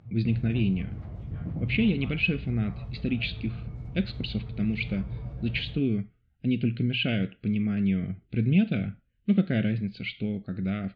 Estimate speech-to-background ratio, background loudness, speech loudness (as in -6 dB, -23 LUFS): 10.0 dB, -38.5 LUFS, -28.5 LUFS